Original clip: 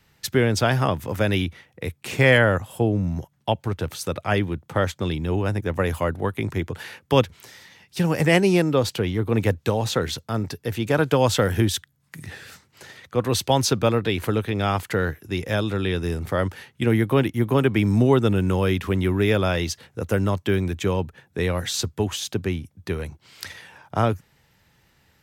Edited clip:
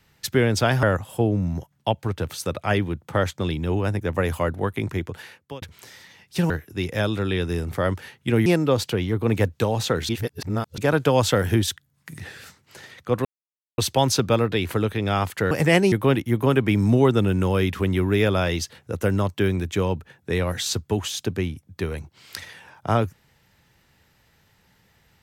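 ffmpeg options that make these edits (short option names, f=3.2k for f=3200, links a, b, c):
-filter_complex "[0:a]asplit=10[a][b][c][d][e][f][g][h][i][j];[a]atrim=end=0.832[k];[b]atrim=start=2.438:end=7.23,asetpts=PTS-STARTPTS,afade=t=out:st=3.872:d=0.92:c=qsin[l];[c]atrim=start=7.23:end=8.112,asetpts=PTS-STARTPTS,afade=t=in:d=0.004:c=hsin[m];[d]atrim=start=15.038:end=17.002[n];[e]atrim=start=8.518:end=10.152[o];[f]atrim=start=10.148:end=10.842,asetpts=PTS-STARTPTS,areverse[p];[g]atrim=start=10.838:end=13.31,asetpts=PTS-STARTPTS,afade=t=out:st=2.468:d=0.004:c=hsin,apad=pad_dur=0.53[q];[h]atrim=start=13.31:end=15.042,asetpts=PTS-STARTPTS,afade=t=in:d=0.004:c=hsin[r];[i]atrim=start=8.108:end=8.522[s];[j]atrim=start=16.998[t];[l][m]concat=n=2:v=0:a=1[u];[k][u]acrossfade=d=0.004:c1=hsin:c2=hsin[v];[v][n]acrossfade=d=0.004:c1=hsin:c2=hsin[w];[w][o]acrossfade=d=0.004:c1=hsin:c2=hsin[x];[x][p]acrossfade=d=0.004:c1=hsin:c2=hsin[y];[q][r]concat=n=2:v=0:a=1[z];[y][z]acrossfade=d=0.004:c1=hsin:c2=hsin[aa];[aa][s]acrossfade=d=0.004:c1=hsin:c2=hsin[ab];[ab][t]acrossfade=d=0.004:c1=hsin:c2=hsin"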